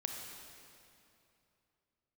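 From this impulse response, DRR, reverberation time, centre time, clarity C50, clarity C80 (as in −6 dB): 1.5 dB, 2.8 s, 87 ms, 2.5 dB, 3.5 dB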